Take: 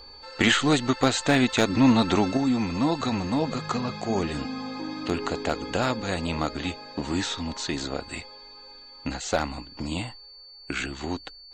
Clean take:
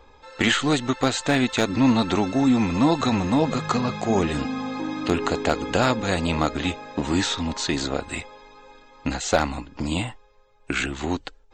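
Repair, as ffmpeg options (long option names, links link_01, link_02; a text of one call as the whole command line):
ffmpeg -i in.wav -af "bandreject=frequency=4500:width=30,asetnsamples=nb_out_samples=441:pad=0,asendcmd='2.37 volume volume 5dB',volume=0dB" out.wav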